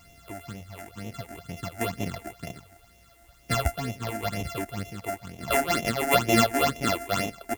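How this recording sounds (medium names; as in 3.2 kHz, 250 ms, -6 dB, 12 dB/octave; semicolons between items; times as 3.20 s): a buzz of ramps at a fixed pitch in blocks of 64 samples; random-step tremolo; phasing stages 8, 2.1 Hz, lowest notch 140–1400 Hz; a quantiser's noise floor 12-bit, dither triangular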